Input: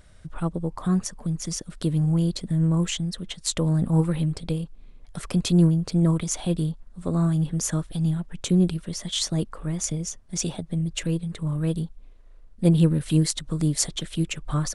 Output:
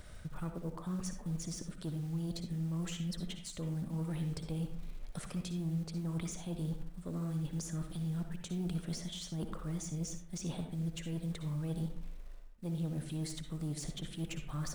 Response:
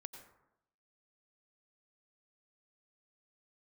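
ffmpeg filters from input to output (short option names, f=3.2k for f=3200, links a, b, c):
-filter_complex "[0:a]areverse,acompressor=threshold=-34dB:ratio=12,areverse,acrusher=bits=6:mode=log:mix=0:aa=0.000001,asoftclip=type=tanh:threshold=-32dB,acrossover=split=410[a][b];[b]acompressor=threshold=-45dB:ratio=6[c];[a][c]amix=inputs=2:normalize=0[d];[1:a]atrim=start_sample=2205,asetrate=70560,aresample=44100[e];[d][e]afir=irnorm=-1:irlink=0,volume=11.5dB"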